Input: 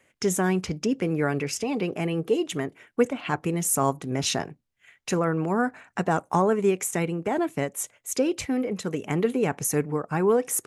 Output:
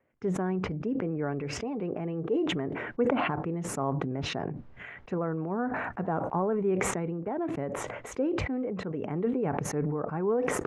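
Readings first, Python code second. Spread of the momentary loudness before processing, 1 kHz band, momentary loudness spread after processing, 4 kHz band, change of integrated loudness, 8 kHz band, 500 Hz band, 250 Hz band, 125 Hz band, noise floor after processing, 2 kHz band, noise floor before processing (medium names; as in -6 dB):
7 LU, -5.0 dB, 6 LU, -6.5 dB, -5.0 dB, -12.0 dB, -5.0 dB, -4.0 dB, -3.5 dB, -49 dBFS, -4.5 dB, -70 dBFS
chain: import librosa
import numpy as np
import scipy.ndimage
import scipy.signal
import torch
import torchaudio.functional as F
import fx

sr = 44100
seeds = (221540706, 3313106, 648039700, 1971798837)

y = scipy.signal.sosfilt(scipy.signal.butter(2, 1200.0, 'lowpass', fs=sr, output='sos'), x)
y = fx.sustainer(y, sr, db_per_s=23.0)
y = y * 10.0 ** (-6.5 / 20.0)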